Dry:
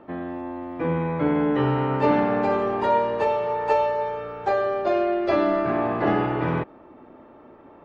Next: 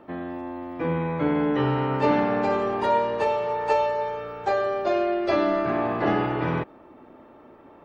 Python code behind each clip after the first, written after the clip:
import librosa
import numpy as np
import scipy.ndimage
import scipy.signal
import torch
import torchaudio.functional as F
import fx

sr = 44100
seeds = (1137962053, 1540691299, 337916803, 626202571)

y = fx.high_shelf(x, sr, hz=4000.0, db=8.5)
y = y * 10.0 ** (-1.5 / 20.0)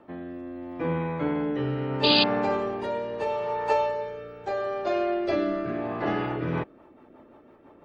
y = fx.spec_paint(x, sr, seeds[0], shape='noise', start_s=2.03, length_s=0.21, low_hz=2400.0, high_hz=4900.0, level_db=-19.0)
y = fx.rotary_switch(y, sr, hz=0.75, then_hz=6.0, switch_at_s=6.05)
y = y * 10.0 ** (-1.5 / 20.0)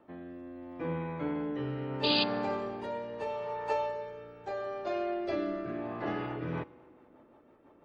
y = fx.rev_fdn(x, sr, rt60_s=2.7, lf_ratio=0.75, hf_ratio=0.55, size_ms=19.0, drr_db=18.0)
y = y * 10.0 ** (-7.5 / 20.0)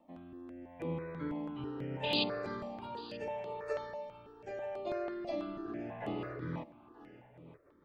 y = x + 10.0 ** (-17.0 / 20.0) * np.pad(x, (int(934 * sr / 1000.0), 0))[:len(x)]
y = fx.phaser_held(y, sr, hz=6.1, low_hz=400.0, high_hz=5700.0)
y = y * 10.0 ** (-2.0 / 20.0)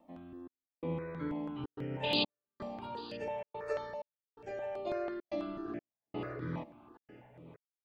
y = fx.step_gate(x, sr, bpm=127, pattern='xxxx...xxxxxxx.', floor_db=-60.0, edge_ms=4.5)
y = y * 10.0 ** (1.0 / 20.0)